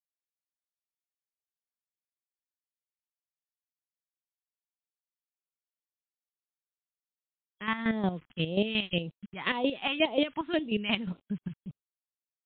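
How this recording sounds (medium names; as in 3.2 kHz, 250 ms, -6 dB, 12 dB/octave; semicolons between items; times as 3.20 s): chopped level 5.6 Hz, depth 65%, duty 30%; a quantiser's noise floor 10-bit, dither none; phasing stages 2, 1.9 Hz, lowest notch 490–1600 Hz; MP3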